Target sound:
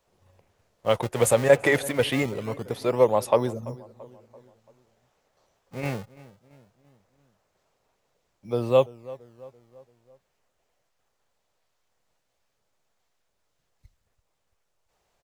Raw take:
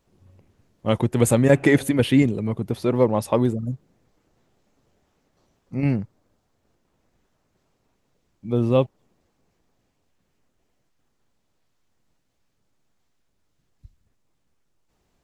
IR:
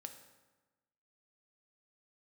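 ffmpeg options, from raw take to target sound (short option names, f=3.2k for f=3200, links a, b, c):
-filter_complex "[0:a]lowshelf=f=390:t=q:w=1.5:g=-8,asplit=2[a][b];[b]adelay=337,lowpass=f=1.8k:p=1,volume=-19dB,asplit=2[c][d];[d]adelay=337,lowpass=f=1.8k:p=1,volume=0.52,asplit=2[e][f];[f]adelay=337,lowpass=f=1.8k:p=1,volume=0.52,asplit=2[g][h];[h]adelay=337,lowpass=f=1.8k:p=1,volume=0.52[i];[a][c][e][g][i]amix=inputs=5:normalize=0,acrossover=split=240|3300[j][k][l];[j]acrusher=samples=37:mix=1:aa=0.000001:lfo=1:lforange=59.2:lforate=0.21[m];[m][k][l]amix=inputs=3:normalize=0"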